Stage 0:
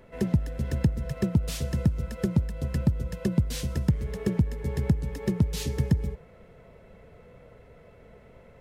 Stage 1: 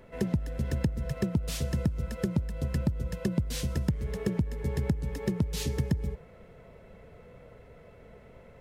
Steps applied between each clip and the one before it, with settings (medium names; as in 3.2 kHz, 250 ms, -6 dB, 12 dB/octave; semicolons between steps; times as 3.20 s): compression 2.5:1, threshold -25 dBFS, peak gain reduction 6 dB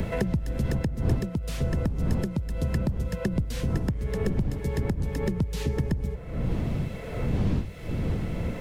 wind noise 120 Hz -30 dBFS; three bands compressed up and down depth 100%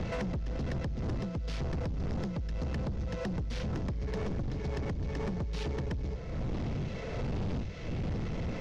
CVSD coder 32 kbps; saturation -30.5 dBFS, distortion -7 dB